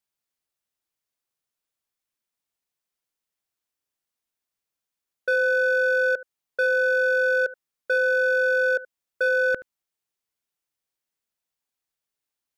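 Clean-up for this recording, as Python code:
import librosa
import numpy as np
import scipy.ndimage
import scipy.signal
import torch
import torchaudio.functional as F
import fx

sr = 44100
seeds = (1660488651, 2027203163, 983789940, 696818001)

y = fx.fix_declip(x, sr, threshold_db=-16.5)
y = fx.fix_echo_inverse(y, sr, delay_ms=75, level_db=-19.0)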